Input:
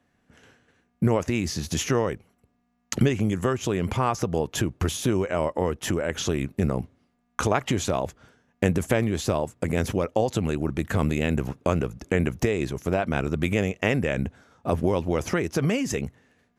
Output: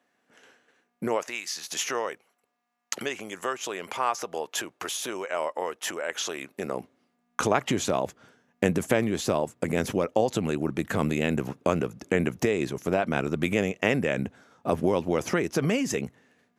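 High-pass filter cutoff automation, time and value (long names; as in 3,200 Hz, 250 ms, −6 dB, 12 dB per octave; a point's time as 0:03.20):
0:01.06 360 Hz
0:01.47 1,400 Hz
0:01.81 630 Hz
0:06.34 630 Hz
0:07.40 160 Hz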